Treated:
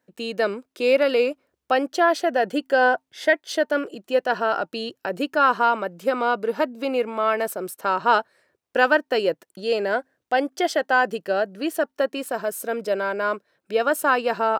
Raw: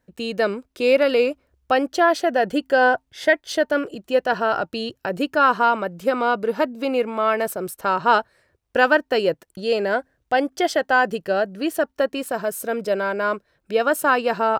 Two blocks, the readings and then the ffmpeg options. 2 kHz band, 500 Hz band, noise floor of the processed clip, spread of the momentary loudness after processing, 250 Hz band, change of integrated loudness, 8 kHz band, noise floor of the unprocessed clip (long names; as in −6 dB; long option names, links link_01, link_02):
−1.5 dB, −1.5 dB, −80 dBFS, 8 LU, −3.0 dB, −1.5 dB, −1.5 dB, −72 dBFS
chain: -af "highpass=210,volume=-1.5dB"